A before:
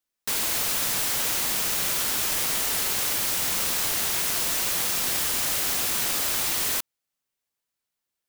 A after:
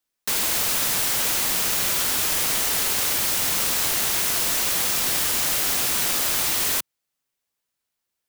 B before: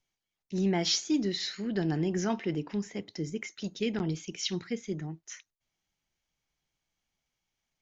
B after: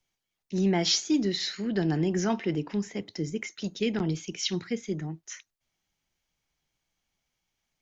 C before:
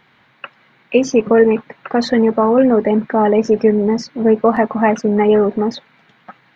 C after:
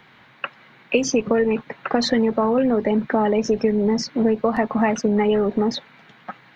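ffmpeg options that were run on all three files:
-filter_complex "[0:a]acrossover=split=120|3000[s0][s1][s2];[s1]acompressor=threshold=0.1:ratio=6[s3];[s0][s3][s2]amix=inputs=3:normalize=0,volume=1.41"

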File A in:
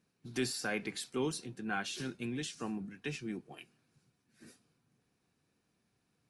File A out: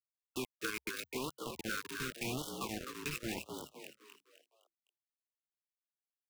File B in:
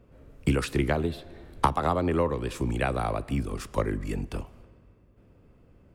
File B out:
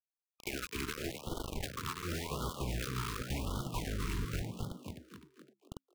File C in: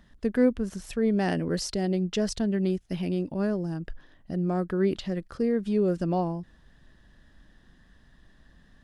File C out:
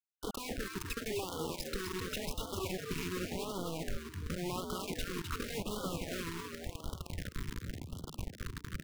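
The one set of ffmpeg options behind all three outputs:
-filter_complex "[0:a]afftfilt=real='re*lt(hypot(re,im),0.398)':imag='im*lt(hypot(re,im),0.398)':win_size=1024:overlap=0.75,acrossover=split=280 2900:gain=0.2 1 0.178[s0][s1][s2];[s0][s1][s2]amix=inputs=3:normalize=0,aecho=1:1:0.8:0.79,asubboost=boost=10:cutoff=92,acompressor=threshold=0.01:ratio=20,aeval=exprs='(mod(37.6*val(0)+1,2)-1)/37.6':c=same,acrusher=bits=6:mix=0:aa=0.000001,asoftclip=type=tanh:threshold=0.0158,asplit=2[s3][s4];[s4]asplit=5[s5][s6][s7][s8][s9];[s5]adelay=256,afreqshift=67,volume=0.531[s10];[s6]adelay=512,afreqshift=134,volume=0.234[s11];[s7]adelay=768,afreqshift=201,volume=0.102[s12];[s8]adelay=1024,afreqshift=268,volume=0.0452[s13];[s9]adelay=1280,afreqshift=335,volume=0.02[s14];[s10][s11][s12][s13][s14]amix=inputs=5:normalize=0[s15];[s3][s15]amix=inputs=2:normalize=0,afftfilt=real='re*(1-between(b*sr/1024,630*pow(2100/630,0.5+0.5*sin(2*PI*0.9*pts/sr))/1.41,630*pow(2100/630,0.5+0.5*sin(2*PI*0.9*pts/sr))*1.41))':imag='im*(1-between(b*sr/1024,630*pow(2100/630,0.5+0.5*sin(2*PI*0.9*pts/sr))/1.41,630*pow(2100/630,0.5+0.5*sin(2*PI*0.9*pts/sr))*1.41))':win_size=1024:overlap=0.75,volume=2.11"

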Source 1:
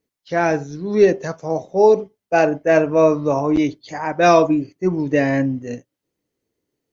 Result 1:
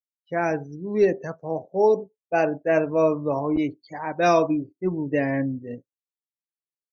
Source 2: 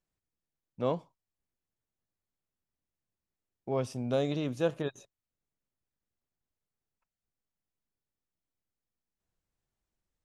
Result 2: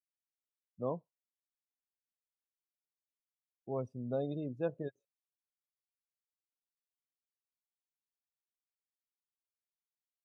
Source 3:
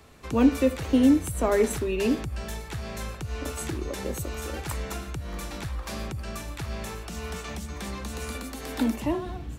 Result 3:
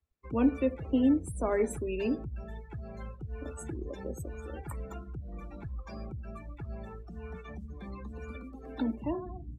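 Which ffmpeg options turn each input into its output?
-af "afftdn=nr=33:nf=-34,volume=0.501"

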